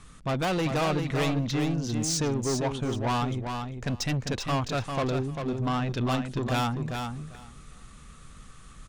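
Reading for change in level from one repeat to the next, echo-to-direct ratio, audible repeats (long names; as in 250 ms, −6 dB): −16.5 dB, −6.0 dB, 2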